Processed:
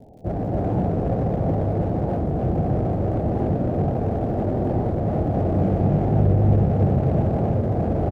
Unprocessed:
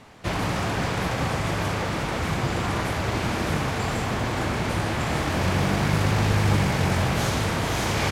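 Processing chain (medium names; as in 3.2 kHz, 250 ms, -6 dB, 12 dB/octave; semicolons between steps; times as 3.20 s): steep low-pass 770 Hz 72 dB/octave; crackle 86 per s -54 dBFS; in parallel at -3 dB: hard clipper -31.5 dBFS, distortion -5 dB; on the sum: loudspeakers at several distances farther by 62 m -11 dB, 94 m -1 dB; warped record 45 rpm, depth 100 cents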